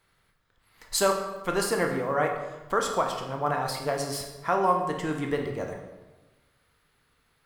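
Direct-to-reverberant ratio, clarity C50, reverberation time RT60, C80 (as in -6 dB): 2.5 dB, 6.0 dB, 1.2 s, 7.5 dB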